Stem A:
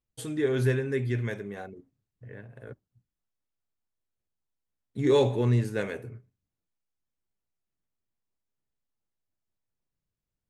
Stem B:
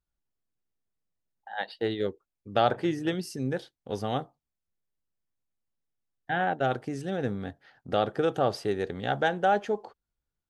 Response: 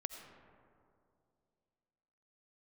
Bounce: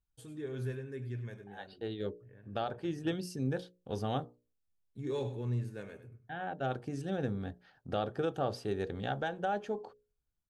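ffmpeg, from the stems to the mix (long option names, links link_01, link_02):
-filter_complex "[0:a]volume=-15.5dB,asplit=3[link_01][link_02][link_03];[link_02]volume=-13dB[link_04];[1:a]bandreject=frequency=60:width_type=h:width=6,bandreject=frequency=120:width_type=h:width=6,bandreject=frequency=180:width_type=h:width=6,bandreject=frequency=240:width_type=h:width=6,bandreject=frequency=300:width_type=h:width=6,bandreject=frequency=360:width_type=h:width=6,bandreject=frequency=420:width_type=h:width=6,bandreject=frequency=480:width_type=h:width=6,bandreject=frequency=540:width_type=h:width=6,bandreject=frequency=600:width_type=h:width=6,alimiter=limit=-18dB:level=0:latency=1:release=487,volume=-5dB[link_05];[link_03]apad=whole_len=462942[link_06];[link_05][link_06]sidechaincompress=threshold=-55dB:ratio=5:attack=10:release=855[link_07];[link_04]aecho=0:1:99:1[link_08];[link_01][link_07][link_08]amix=inputs=3:normalize=0,lowshelf=frequency=150:gain=8,bandreject=frequency=2000:width=9"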